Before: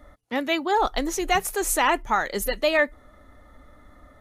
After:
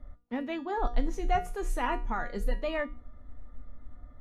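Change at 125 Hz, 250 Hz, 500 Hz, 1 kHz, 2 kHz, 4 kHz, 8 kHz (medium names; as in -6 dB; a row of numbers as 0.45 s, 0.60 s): +3.5 dB, -6.5 dB, -9.5 dB, -9.0 dB, -13.0 dB, -16.5 dB, -22.0 dB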